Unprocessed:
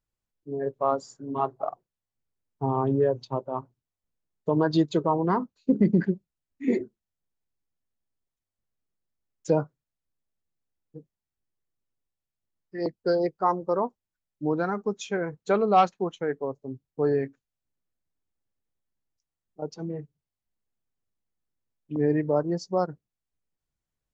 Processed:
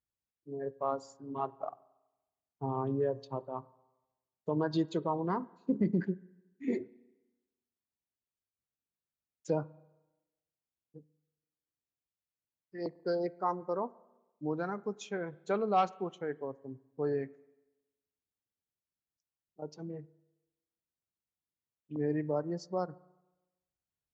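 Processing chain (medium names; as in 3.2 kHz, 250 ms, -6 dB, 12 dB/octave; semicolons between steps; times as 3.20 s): high-pass 53 Hz; reverberation RT60 1.1 s, pre-delay 33 ms, DRR 20.5 dB; trim -8.5 dB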